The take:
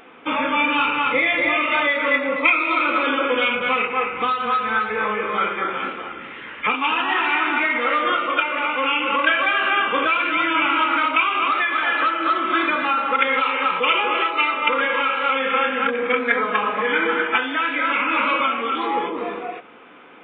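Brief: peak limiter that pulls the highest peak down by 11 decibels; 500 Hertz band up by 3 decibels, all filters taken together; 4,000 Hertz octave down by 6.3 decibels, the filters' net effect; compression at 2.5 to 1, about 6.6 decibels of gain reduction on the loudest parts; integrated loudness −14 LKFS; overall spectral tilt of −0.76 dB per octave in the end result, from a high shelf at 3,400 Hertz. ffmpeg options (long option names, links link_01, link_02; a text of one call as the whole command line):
ffmpeg -i in.wav -af "equalizer=frequency=500:width_type=o:gain=3.5,highshelf=frequency=3400:gain=-3.5,equalizer=frequency=4000:width_type=o:gain=-7.5,acompressor=threshold=-25dB:ratio=2.5,volume=16.5dB,alimiter=limit=-6.5dB:level=0:latency=1" out.wav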